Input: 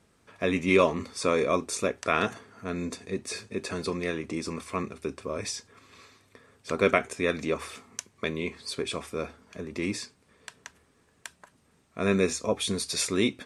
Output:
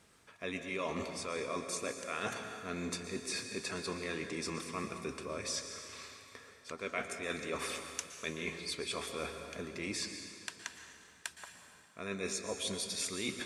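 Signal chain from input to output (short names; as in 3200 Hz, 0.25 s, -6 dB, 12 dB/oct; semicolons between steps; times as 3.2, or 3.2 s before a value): tilt shelf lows -4 dB, about 870 Hz; reverse; compressor 6:1, threshold -36 dBFS, peak gain reduction 18.5 dB; reverse; plate-style reverb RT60 2.1 s, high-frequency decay 0.9×, pre-delay 0.105 s, DRR 6 dB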